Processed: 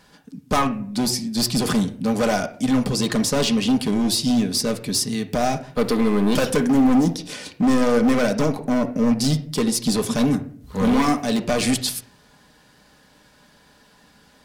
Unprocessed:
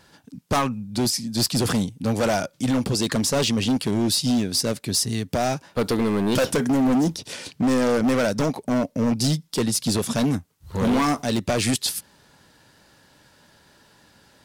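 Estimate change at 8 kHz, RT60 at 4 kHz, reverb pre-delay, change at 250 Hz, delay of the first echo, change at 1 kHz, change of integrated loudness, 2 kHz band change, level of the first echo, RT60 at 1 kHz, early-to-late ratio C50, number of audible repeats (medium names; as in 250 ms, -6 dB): 0.0 dB, 0.35 s, 4 ms, +3.0 dB, no echo, +2.0 dB, +2.0 dB, +1.5 dB, no echo, 0.45 s, 16.0 dB, no echo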